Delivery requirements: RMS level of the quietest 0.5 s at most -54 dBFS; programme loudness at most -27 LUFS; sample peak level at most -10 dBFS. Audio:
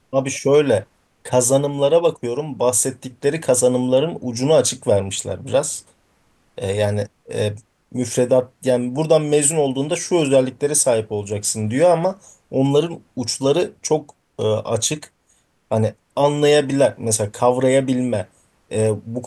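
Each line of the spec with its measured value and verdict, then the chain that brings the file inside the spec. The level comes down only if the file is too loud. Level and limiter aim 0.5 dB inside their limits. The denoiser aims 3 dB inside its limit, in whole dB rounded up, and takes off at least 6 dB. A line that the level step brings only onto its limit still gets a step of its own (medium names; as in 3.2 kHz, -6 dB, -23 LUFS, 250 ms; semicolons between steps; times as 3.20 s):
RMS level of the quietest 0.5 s -62 dBFS: pass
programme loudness -19.0 LUFS: fail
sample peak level -2.0 dBFS: fail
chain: trim -8.5 dB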